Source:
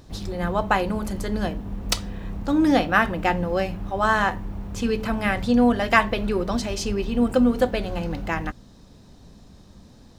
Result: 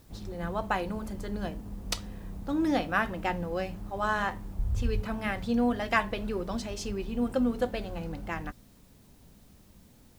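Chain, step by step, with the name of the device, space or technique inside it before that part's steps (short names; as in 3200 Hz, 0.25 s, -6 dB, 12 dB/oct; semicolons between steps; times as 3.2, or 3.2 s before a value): plain cassette with noise reduction switched in (mismatched tape noise reduction decoder only; wow and flutter; white noise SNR 33 dB); 4.59–5.02 resonant low shelf 130 Hz +13 dB, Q 1.5; gain -8.5 dB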